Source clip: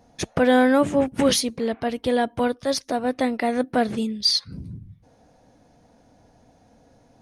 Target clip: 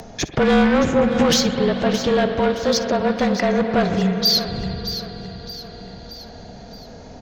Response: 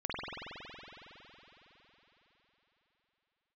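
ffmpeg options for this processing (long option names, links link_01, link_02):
-filter_complex "[0:a]aresample=16000,aresample=44100,afreqshift=-33,asoftclip=type=tanh:threshold=-18.5dB,aecho=1:1:620|1240|1860|2480:0.282|0.104|0.0386|0.0143,asplit=2[link_01][link_02];[1:a]atrim=start_sample=2205,adelay=59[link_03];[link_02][link_03]afir=irnorm=-1:irlink=0,volume=-14dB[link_04];[link_01][link_04]amix=inputs=2:normalize=0,acompressor=mode=upward:threshold=-35dB:ratio=2.5,volume=6.5dB"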